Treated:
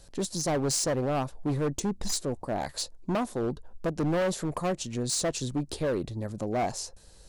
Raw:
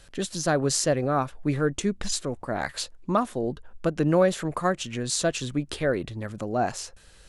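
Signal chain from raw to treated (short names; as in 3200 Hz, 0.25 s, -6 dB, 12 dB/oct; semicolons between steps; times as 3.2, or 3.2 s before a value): band shelf 2000 Hz -9.5 dB; hard clip -24 dBFS, distortion -8 dB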